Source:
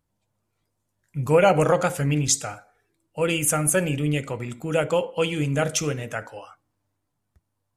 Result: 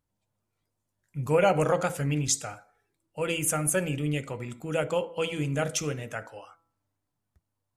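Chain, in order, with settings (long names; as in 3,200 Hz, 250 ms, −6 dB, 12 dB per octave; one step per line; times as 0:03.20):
hum removal 165.9 Hz, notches 8
level −5 dB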